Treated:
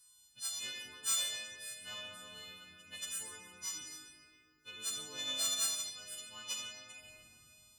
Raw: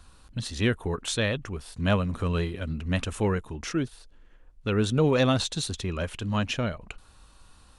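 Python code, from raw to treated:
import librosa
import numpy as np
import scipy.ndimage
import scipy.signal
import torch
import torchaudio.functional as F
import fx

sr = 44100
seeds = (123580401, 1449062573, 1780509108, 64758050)

y = fx.freq_snap(x, sr, grid_st=3)
y = fx.dmg_wind(y, sr, seeds[0], corner_hz=93.0, level_db=-39.0)
y = librosa.effects.preemphasis(y, coef=0.97, zi=[0.0])
y = fx.rev_freeverb(y, sr, rt60_s=2.7, hf_ratio=0.65, predelay_ms=15, drr_db=-1.0)
y = fx.tube_stage(y, sr, drive_db=19.0, bias=0.75)
y = scipy.signal.sosfilt(scipy.signal.butter(2, 47.0, 'highpass', fs=sr, output='sos'), y)
y = y * 10.0 ** (-6.5 / 20.0)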